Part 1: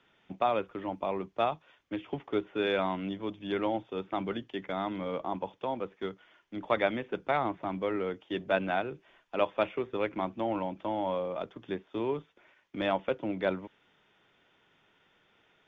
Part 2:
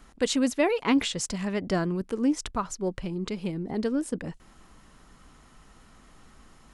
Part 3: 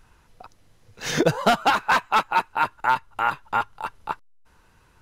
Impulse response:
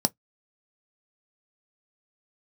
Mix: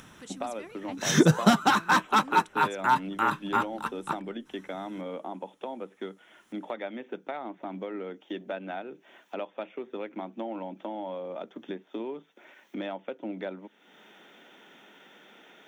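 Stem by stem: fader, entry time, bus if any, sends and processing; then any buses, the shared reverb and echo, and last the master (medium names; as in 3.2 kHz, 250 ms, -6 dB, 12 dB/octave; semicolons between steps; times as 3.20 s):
+2.0 dB, 0.00 s, no bus, send -19.5 dB, high-pass 170 Hz 24 dB/octave; compression 4:1, threshold -39 dBFS, peak gain reduction 15 dB; treble shelf 9.8 kHz +10.5 dB
-18.5 dB, 0.00 s, bus A, send -20.5 dB, treble shelf 8.8 kHz +11.5 dB
-1.5 dB, 0.00 s, bus A, send -11.5 dB, none
bus A: 0.0 dB, Bessel high-pass 580 Hz, order 8; peak limiter -14.5 dBFS, peak gain reduction 4.5 dB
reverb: on, pre-delay 3 ms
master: upward compressor, threshold -44 dBFS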